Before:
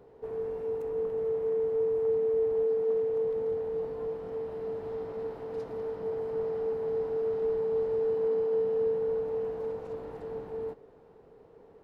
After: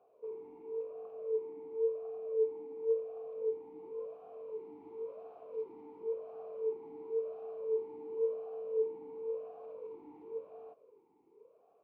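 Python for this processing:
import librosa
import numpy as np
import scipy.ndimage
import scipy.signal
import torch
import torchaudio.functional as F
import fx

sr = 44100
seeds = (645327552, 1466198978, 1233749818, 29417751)

y = fx.vowel_sweep(x, sr, vowels='a-u', hz=0.94)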